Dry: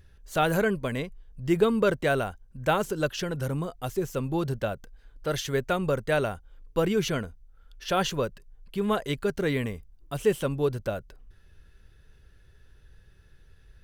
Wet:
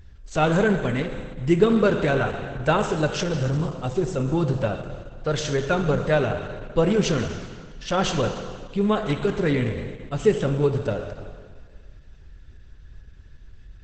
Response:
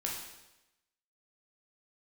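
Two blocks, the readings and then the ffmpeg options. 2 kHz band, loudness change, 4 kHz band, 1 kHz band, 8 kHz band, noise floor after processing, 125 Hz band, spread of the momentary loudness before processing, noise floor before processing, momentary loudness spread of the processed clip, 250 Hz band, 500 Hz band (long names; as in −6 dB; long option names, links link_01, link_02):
+3.0 dB, +4.5 dB, +3.0 dB, +3.5 dB, +3.5 dB, −46 dBFS, +7.0 dB, 11 LU, −56 dBFS, 12 LU, +6.0 dB, +4.5 dB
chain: -filter_complex "[0:a]lowshelf=frequency=190:gain=6,asplit=2[link_01][link_02];[1:a]atrim=start_sample=2205,asetrate=23814,aresample=44100[link_03];[link_02][link_03]afir=irnorm=-1:irlink=0,volume=-9dB[link_04];[link_01][link_04]amix=inputs=2:normalize=0" -ar 48000 -c:a libopus -b:a 10k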